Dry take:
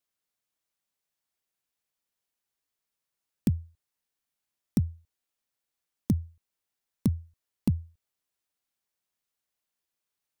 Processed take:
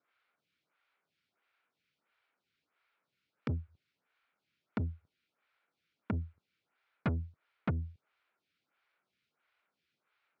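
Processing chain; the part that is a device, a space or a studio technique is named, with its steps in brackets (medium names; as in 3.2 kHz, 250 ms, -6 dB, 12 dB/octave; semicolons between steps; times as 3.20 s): vibe pedal into a guitar amplifier (lamp-driven phase shifter 1.5 Hz; valve stage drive 40 dB, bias 0.35; cabinet simulation 86–4000 Hz, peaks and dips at 150 Hz +3 dB, 1.4 kHz +10 dB, 2.3 kHz +7 dB); trim +12 dB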